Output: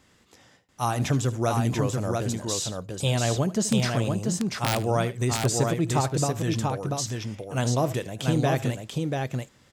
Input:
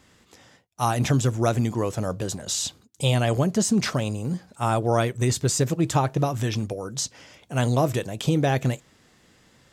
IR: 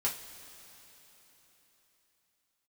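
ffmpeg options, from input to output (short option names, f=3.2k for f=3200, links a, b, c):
-filter_complex "[0:a]asettb=1/sr,asplit=3[a][b][c];[a]atrim=end=3.564[d];[b]atrim=start=3.56:end=4.8,asetpts=PTS-STARTPTS,afade=t=in:d=0.004:c=qsin,afade=t=out:st=1.236:d=0.004:c=qsin,aeval=exprs='(mod(3.98*val(0)+1,2)-1)/3.98':c=same[e];[c]atrim=start=4.796[f];[d][e]acrossfade=d=0.004:c1=hsin:c2=qsin[g];[g][f]acrossfade=d=0.004:c1=qsin:c2=hsin,aecho=1:1:76|688:0.15|0.668,volume=-3dB"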